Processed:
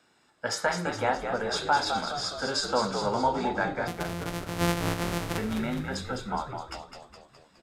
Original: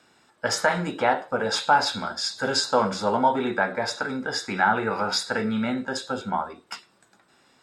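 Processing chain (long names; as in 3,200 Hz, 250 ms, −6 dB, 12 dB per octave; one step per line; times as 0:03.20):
0:03.87–0:05.38: samples sorted by size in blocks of 256 samples
echo with shifted repeats 208 ms, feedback 55%, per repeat −66 Hz, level −6.5 dB
downsampling to 32,000 Hz
level −5.5 dB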